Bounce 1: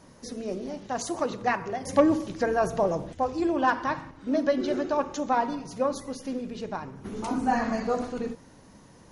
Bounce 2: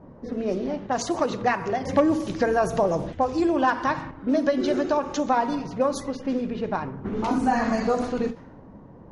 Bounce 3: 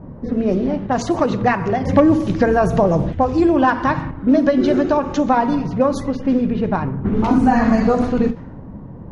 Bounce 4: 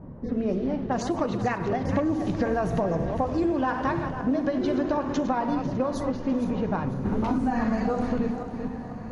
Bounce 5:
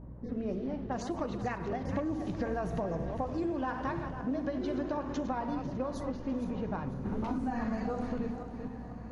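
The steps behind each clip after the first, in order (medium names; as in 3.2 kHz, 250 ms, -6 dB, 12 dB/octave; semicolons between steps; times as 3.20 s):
level-controlled noise filter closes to 730 Hz, open at -24 dBFS; compression 2:1, threshold -29 dBFS, peak gain reduction 8.5 dB; endings held to a fixed fall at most 240 dB/s; trim +7.5 dB
tone controls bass +9 dB, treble -7 dB; trim +5.5 dB
backward echo that repeats 248 ms, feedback 53%, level -10.5 dB; compression, threshold -15 dBFS, peak gain reduction 8 dB; echo that smears into a reverb 1298 ms, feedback 41%, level -15 dB; trim -6.5 dB
hum 60 Hz, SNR 13 dB; trim -8.5 dB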